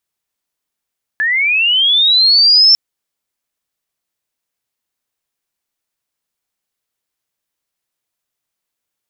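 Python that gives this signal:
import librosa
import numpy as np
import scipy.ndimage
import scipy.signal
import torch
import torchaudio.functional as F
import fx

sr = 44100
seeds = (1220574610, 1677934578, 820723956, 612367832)

y = fx.chirp(sr, length_s=1.55, from_hz=1700.0, to_hz=5400.0, law='linear', from_db=-12.0, to_db=-4.5)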